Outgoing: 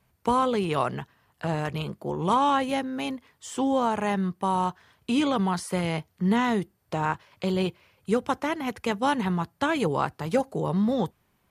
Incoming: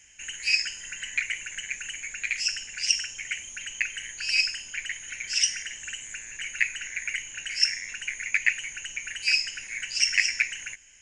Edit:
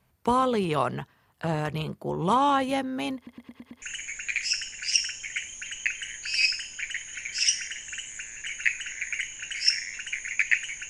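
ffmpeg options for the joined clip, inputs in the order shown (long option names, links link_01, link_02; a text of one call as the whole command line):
ffmpeg -i cue0.wav -i cue1.wav -filter_complex "[0:a]apad=whole_dur=10.89,atrim=end=10.89,asplit=6[link_01][link_02][link_03][link_04][link_05][link_06];[link_01]atrim=end=3.272[link_07];[link_02]atrim=start=3.158:end=3.272[link_08];[link_03]atrim=start=3.158:end=3.272[link_09];[link_04]atrim=start=3.158:end=3.272[link_10];[link_05]atrim=start=3.158:end=3.272[link_11];[link_06]atrim=start=3.158:end=3.272[link_12];[1:a]atrim=start=1.768:end=8.84[link_13];[link_07][link_08]acrossfade=duration=0.004:curve1=hsin:curve2=hsin[link_14];[link_14][link_09]acrossfade=duration=0.004:curve1=hsin:curve2=hsin[link_15];[link_15][link_10]acrossfade=duration=0.004:curve1=hsin:curve2=hsin[link_16];[link_16][link_11]acrossfade=duration=0.004:curve1=hsin:curve2=hsin[link_17];[link_17][link_12]acrossfade=duration=0.004:curve1=hsin:curve2=hsin[link_18];[link_18][link_13]acrossfade=duration=0.004:curve1=hsin:curve2=hsin" out.wav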